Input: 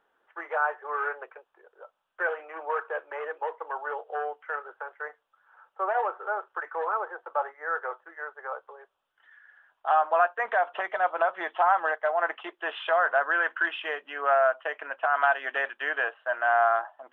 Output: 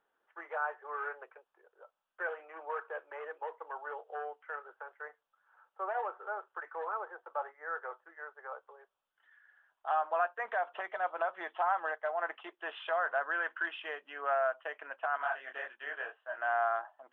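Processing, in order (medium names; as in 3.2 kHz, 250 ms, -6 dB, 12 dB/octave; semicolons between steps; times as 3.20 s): 15.17–16.38 s: detune thickener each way 51 cents; trim -8.5 dB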